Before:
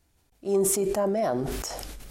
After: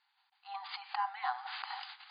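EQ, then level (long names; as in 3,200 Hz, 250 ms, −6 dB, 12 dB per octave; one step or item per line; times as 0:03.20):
linear-phase brick-wall band-pass 740–4,900 Hz
notch filter 2,400 Hz, Q 23
+1.0 dB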